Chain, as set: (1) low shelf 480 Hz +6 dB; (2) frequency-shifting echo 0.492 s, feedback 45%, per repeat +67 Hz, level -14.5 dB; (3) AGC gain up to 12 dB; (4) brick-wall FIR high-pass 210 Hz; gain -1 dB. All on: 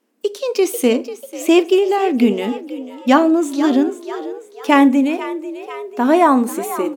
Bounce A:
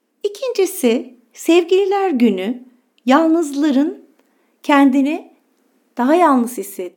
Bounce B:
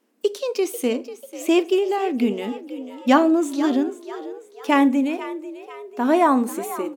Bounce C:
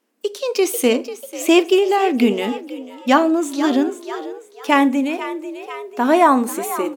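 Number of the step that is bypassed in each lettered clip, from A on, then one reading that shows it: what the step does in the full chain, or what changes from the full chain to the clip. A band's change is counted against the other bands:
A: 2, momentary loudness spread change -2 LU; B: 3, crest factor change +2.0 dB; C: 1, 250 Hz band -3.5 dB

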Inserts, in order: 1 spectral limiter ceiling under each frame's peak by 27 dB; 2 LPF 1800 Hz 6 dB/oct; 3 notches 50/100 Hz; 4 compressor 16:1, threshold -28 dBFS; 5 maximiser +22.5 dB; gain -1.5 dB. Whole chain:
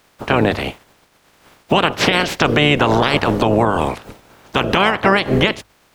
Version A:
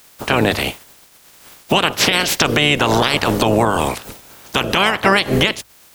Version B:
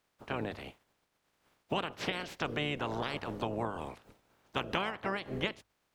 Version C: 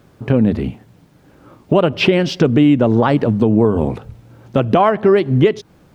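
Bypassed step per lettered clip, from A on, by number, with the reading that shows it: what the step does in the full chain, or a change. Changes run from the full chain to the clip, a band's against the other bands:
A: 2, 8 kHz band +10.5 dB; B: 5, crest factor change +8.0 dB; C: 1, 2 kHz band -10.5 dB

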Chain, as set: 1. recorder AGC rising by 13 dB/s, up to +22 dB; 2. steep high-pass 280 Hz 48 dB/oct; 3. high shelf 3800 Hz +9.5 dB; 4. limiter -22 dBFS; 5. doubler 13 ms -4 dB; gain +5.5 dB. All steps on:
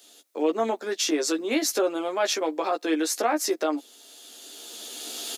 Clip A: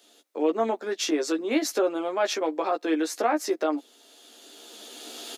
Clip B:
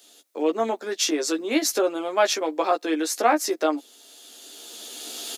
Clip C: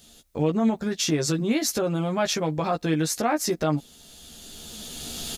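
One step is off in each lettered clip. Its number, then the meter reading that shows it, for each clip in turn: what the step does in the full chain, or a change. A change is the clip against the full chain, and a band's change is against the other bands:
3, 8 kHz band -6.0 dB; 4, crest factor change +3.5 dB; 2, 250 Hz band +4.0 dB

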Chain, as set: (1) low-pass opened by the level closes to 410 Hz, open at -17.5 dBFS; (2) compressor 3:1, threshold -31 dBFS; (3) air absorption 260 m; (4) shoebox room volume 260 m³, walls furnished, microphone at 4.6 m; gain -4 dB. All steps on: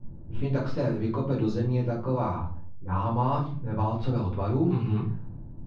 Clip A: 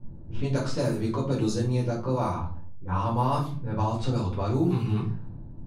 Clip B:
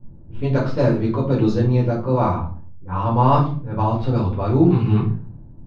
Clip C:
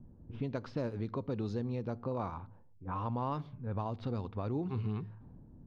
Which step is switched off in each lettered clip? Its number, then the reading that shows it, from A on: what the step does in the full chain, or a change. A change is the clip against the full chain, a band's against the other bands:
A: 3, 2 kHz band +2.0 dB; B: 2, mean gain reduction 6.0 dB; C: 4, echo-to-direct 5.5 dB to none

